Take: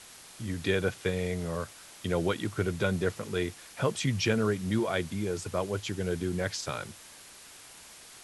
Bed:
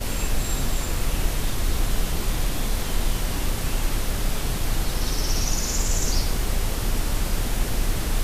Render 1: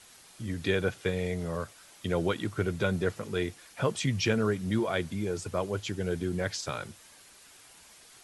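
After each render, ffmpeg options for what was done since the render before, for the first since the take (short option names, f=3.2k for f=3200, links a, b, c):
-af "afftdn=nr=6:nf=-51"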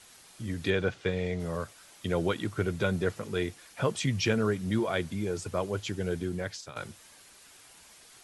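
-filter_complex "[0:a]asettb=1/sr,asplit=3[a][b][c];[a]atrim=end=0.704[d];[b]atrim=start=0.7:end=1.4,asetpts=PTS-STARTPTS,afade=t=in:d=0.004:c=qsin,afade=t=out:st=0.696:d=0.004:c=qsin,lowpass=5.7k[e];[c]atrim=start=1.396[f];[d][e]acrossfade=d=0.004:c1=hsin:c2=qsin[g];[g][f]acrossfade=d=0.004:c1=qsin:c2=hsin,asplit=2[h][i];[h]atrim=end=6.76,asetpts=PTS-STARTPTS,afade=t=out:st=5.94:d=0.82:c=qsin:silence=0.211349[j];[i]atrim=start=6.76,asetpts=PTS-STARTPTS,afade=t=in:d=0.004:c=hsin:silence=0.211349[k];[j][k]concat=n=2:v=0:a=1"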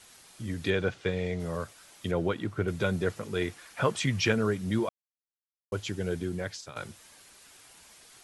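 -filter_complex "[0:a]asettb=1/sr,asplit=3[a][b][c];[a]atrim=end=2.114[d];[b]atrim=start=2.11:end=2.68,asetpts=PTS-STARTPTS,afade=t=in:d=0.004:c=qsin,afade=t=out:st=0.566:d=0.004:c=qsin,highshelf=f=3.7k:g=-11[e];[c]atrim=start=2.676[f];[d][e]acrossfade=d=0.004:c1=hsin:c2=qsin[g];[g][f]acrossfade=d=0.004:c1=qsin:c2=hsin,asettb=1/sr,asplit=3[h][i][j];[h]atrim=end=3.414[k];[i]atrim=start=3.41:end=4.32,asetpts=PTS-STARTPTS,afade=t=in:d=0.004:c=qsin,afade=t=out:st=0.906:d=0.004:c=qsin,equalizer=f=1.4k:w=0.75:g=5.5[l];[j]atrim=start=4.316[m];[k][l]acrossfade=d=0.004:c1=hsin:c2=qsin[n];[n][m]acrossfade=d=0.004:c1=qsin:c2=hsin,asplit=3[o][p][q];[o]atrim=end=4.89,asetpts=PTS-STARTPTS,afade=t=out:st=4.886:d=0.004:c=hsin[r];[p]atrim=start=4.89:end=5.72,asetpts=PTS-STARTPTS,volume=0[s];[q]atrim=start=5.72,asetpts=PTS-STARTPTS,afade=t=in:d=0.004:c=hsin[t];[r][s][t]concat=n=3:v=0:a=1"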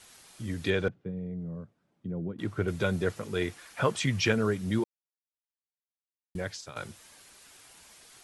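-filter_complex "[0:a]asettb=1/sr,asplit=3[a][b][c];[a]atrim=end=0.884[d];[b]atrim=start=0.88:end=2.39,asetpts=PTS-STARTPTS,afade=t=in:d=0.004:c=qsin,afade=t=out:st=1.506:d=0.004:c=qsin,bandpass=f=180:t=q:w=1.8[e];[c]atrim=start=2.386[f];[d][e]acrossfade=d=0.004:c1=hsin:c2=qsin[g];[g][f]acrossfade=d=0.004:c1=qsin:c2=hsin,asplit=3[h][i][j];[h]atrim=end=4.84,asetpts=PTS-STARTPTS,afade=t=out:st=4.836:d=0.004:c=hsin[k];[i]atrim=start=4.84:end=6.35,asetpts=PTS-STARTPTS,volume=0[l];[j]atrim=start=6.35,asetpts=PTS-STARTPTS,afade=t=in:d=0.004:c=hsin[m];[k][l][m]concat=n=3:v=0:a=1"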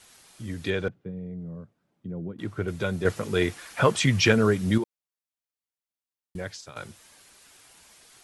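-filter_complex "[0:a]asettb=1/sr,asplit=3[a][b][c];[a]atrim=end=3.054[d];[b]atrim=start=3.05:end=4.78,asetpts=PTS-STARTPTS,afade=t=in:d=0.004:c=qsin,afade=t=out:st=1.726:d=0.004:c=qsin,acontrast=62[e];[c]atrim=start=4.776[f];[d][e]acrossfade=d=0.004:c1=hsin:c2=qsin[g];[g][f]acrossfade=d=0.004:c1=qsin:c2=hsin"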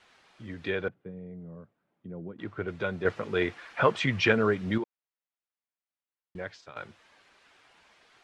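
-af "lowpass=2.7k,lowshelf=f=260:g=-10"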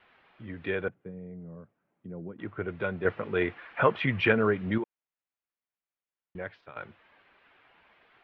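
-af "lowpass=f=3k:w=0.5412,lowpass=f=3k:w=1.3066"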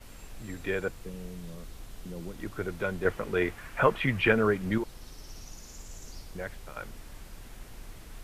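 -filter_complex "[1:a]volume=-22dB[a];[0:a][a]amix=inputs=2:normalize=0"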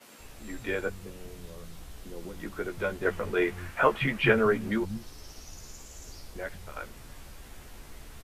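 -filter_complex "[0:a]asplit=2[a][b];[b]adelay=14,volume=-5.5dB[c];[a][c]amix=inputs=2:normalize=0,acrossover=split=180[d][e];[d]adelay=190[f];[f][e]amix=inputs=2:normalize=0"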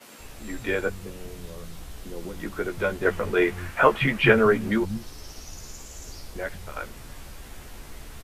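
-af "volume=5dB"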